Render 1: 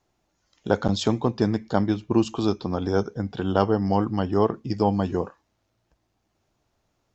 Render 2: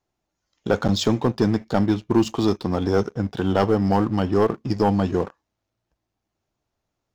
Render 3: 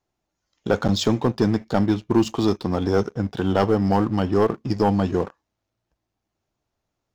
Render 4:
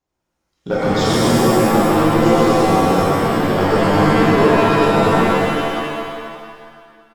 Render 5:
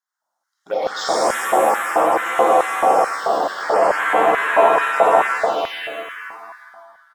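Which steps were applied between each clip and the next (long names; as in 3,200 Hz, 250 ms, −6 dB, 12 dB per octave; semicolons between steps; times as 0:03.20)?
leveller curve on the samples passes 2; level −3.5 dB
no processing that can be heard
on a send: loudspeakers that aren't time-aligned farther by 43 metres −4 dB, 83 metres −5 dB; on the sum: reverb with rising layers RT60 1.8 s, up +7 semitones, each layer −2 dB, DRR −6 dB; level −5 dB
phaser swept by the level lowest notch 430 Hz, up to 4,800 Hz, full sweep at −9.5 dBFS; auto-filter high-pass square 2.3 Hz 670–1,600 Hz; level −1 dB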